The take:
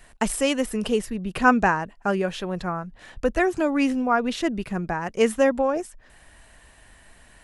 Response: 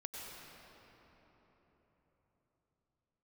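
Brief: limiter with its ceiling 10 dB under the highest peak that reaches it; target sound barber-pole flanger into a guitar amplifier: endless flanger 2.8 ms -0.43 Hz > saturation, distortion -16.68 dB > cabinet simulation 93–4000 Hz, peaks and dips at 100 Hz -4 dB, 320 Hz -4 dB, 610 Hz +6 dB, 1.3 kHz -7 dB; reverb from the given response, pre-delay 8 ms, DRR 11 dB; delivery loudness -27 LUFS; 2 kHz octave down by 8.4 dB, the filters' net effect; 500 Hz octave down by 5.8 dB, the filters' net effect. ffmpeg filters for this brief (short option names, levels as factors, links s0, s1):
-filter_complex "[0:a]equalizer=f=500:t=o:g=-9,equalizer=f=2000:t=o:g=-8.5,alimiter=limit=0.119:level=0:latency=1,asplit=2[s0][s1];[1:a]atrim=start_sample=2205,adelay=8[s2];[s1][s2]afir=irnorm=-1:irlink=0,volume=0.316[s3];[s0][s3]amix=inputs=2:normalize=0,asplit=2[s4][s5];[s5]adelay=2.8,afreqshift=-0.43[s6];[s4][s6]amix=inputs=2:normalize=1,asoftclip=threshold=0.075,highpass=93,equalizer=f=100:t=q:w=4:g=-4,equalizer=f=320:t=q:w=4:g=-4,equalizer=f=610:t=q:w=4:g=6,equalizer=f=1300:t=q:w=4:g=-7,lowpass=f=4000:w=0.5412,lowpass=f=4000:w=1.3066,volume=2.24"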